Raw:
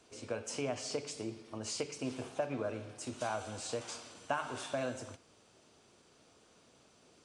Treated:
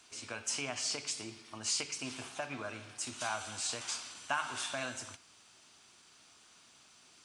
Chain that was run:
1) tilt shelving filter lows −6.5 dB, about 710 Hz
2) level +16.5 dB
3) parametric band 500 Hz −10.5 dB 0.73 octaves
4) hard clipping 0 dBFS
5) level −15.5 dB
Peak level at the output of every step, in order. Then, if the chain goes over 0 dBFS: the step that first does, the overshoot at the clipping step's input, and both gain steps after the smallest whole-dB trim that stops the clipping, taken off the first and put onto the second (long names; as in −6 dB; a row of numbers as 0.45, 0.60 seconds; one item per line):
−20.0, −3.5, −4.0, −4.0, −19.5 dBFS
no step passes full scale